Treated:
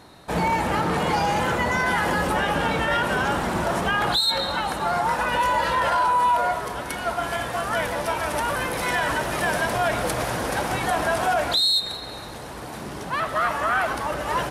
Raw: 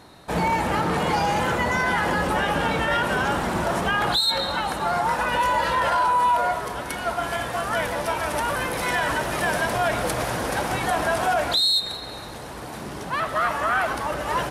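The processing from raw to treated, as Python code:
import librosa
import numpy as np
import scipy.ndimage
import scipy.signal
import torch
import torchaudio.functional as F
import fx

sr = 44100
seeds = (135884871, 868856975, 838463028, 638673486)

y = fx.high_shelf(x, sr, hz=8100.0, db=5.5, at=(1.86, 2.32))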